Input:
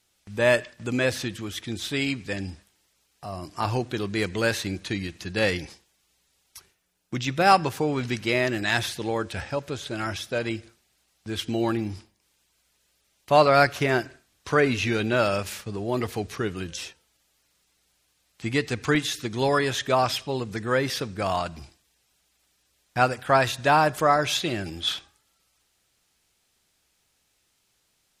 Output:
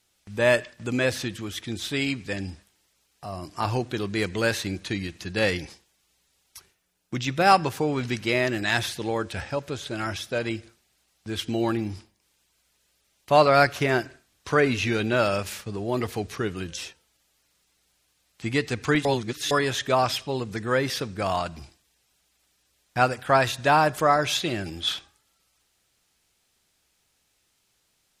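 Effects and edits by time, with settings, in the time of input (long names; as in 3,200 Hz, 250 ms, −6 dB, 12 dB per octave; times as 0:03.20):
0:19.05–0:19.51: reverse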